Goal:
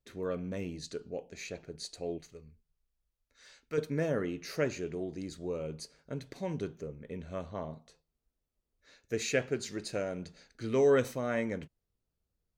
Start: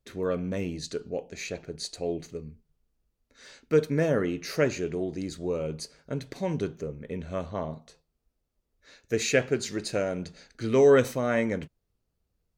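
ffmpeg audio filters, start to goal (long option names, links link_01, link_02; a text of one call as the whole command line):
ffmpeg -i in.wav -filter_complex "[0:a]asettb=1/sr,asplit=3[link_01][link_02][link_03];[link_01]atrim=end=2.184[link_04];[link_02]atrim=start=2.18:end=3.78,asetpts=PTS-STARTPTS,afade=type=in:duration=0.004:curve=qsin,afade=type=out:start_time=1.596:duration=0.004:curve=qsin,equalizer=frequency=250:width_type=o:width=2.3:gain=-9.5[link_05];[link_03]atrim=start=3.776[link_06];[link_04][link_05]acrossfade=duration=0.004:curve1=hsin:curve2=qsin[link_07];[link_07][link_06]acrossfade=duration=0.004:curve1=qsin:curve2=hsin,volume=-6.5dB" out.wav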